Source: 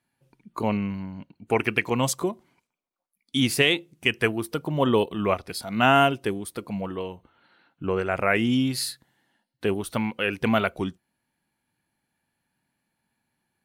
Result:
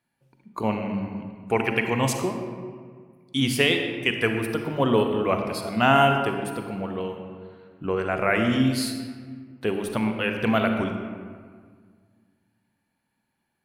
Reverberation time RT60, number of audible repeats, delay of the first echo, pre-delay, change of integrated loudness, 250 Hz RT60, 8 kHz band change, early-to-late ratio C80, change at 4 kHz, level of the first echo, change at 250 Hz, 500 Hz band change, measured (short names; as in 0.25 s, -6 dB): 1.8 s, none, none, 37 ms, +0.5 dB, 2.2 s, -2.0 dB, 6.0 dB, -0.5 dB, none, +1.0 dB, +1.0 dB